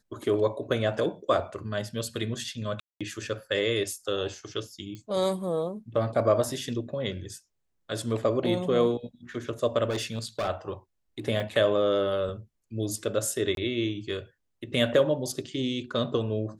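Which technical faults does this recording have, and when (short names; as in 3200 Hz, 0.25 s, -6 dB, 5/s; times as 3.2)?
2.8–3.01 gap 0.206 s
4.95 pop -28 dBFS
9.89–10.49 clipped -25.5 dBFS
11.4 gap 2.2 ms
13.55–13.57 gap 22 ms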